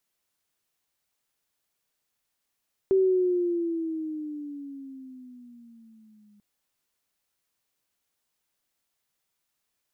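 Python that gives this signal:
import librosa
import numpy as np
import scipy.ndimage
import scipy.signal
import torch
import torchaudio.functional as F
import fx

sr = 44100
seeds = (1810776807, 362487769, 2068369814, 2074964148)

y = fx.riser_tone(sr, length_s=3.49, level_db=-17.0, wave='sine', hz=386.0, rise_st=-11.0, swell_db=-38)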